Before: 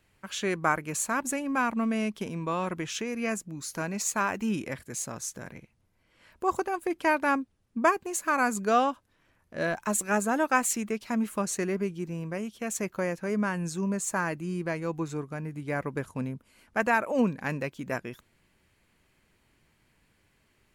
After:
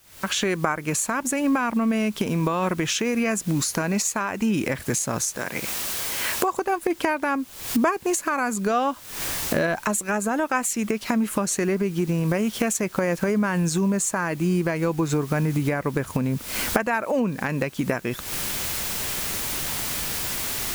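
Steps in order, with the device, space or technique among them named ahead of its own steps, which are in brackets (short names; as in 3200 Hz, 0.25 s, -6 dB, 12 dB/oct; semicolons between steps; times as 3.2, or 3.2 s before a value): 5.36–6.57 HPF 590 Hz 6 dB/oct; cheap recorder with automatic gain (white noise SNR 28 dB; recorder AGC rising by 77 dB/s)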